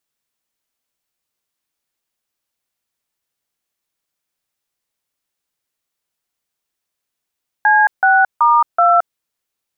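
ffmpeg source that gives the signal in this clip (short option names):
-f lavfi -i "aevalsrc='0.282*clip(min(mod(t,0.378),0.221-mod(t,0.378))/0.002,0,1)*(eq(floor(t/0.378),0)*(sin(2*PI*852*mod(t,0.378))+sin(2*PI*1633*mod(t,0.378)))+eq(floor(t/0.378),1)*(sin(2*PI*770*mod(t,0.378))+sin(2*PI*1477*mod(t,0.378)))+eq(floor(t/0.378),2)*(sin(2*PI*941*mod(t,0.378))+sin(2*PI*1209*mod(t,0.378)))+eq(floor(t/0.378),3)*(sin(2*PI*697*mod(t,0.378))+sin(2*PI*1336*mod(t,0.378))))':d=1.512:s=44100"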